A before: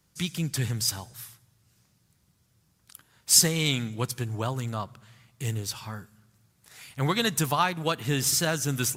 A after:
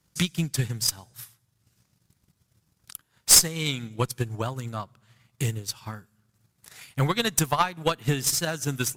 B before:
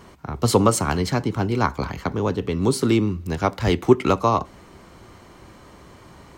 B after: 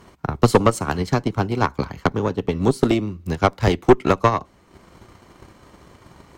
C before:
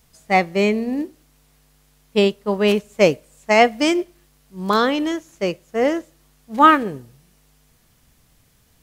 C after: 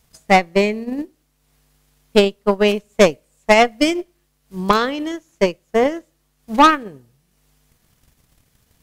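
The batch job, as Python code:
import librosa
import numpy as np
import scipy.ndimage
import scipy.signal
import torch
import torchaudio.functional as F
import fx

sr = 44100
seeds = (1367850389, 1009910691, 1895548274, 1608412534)

y = fx.transient(x, sr, attack_db=11, sustain_db=-6)
y = fx.tube_stage(y, sr, drive_db=5.0, bias=0.55)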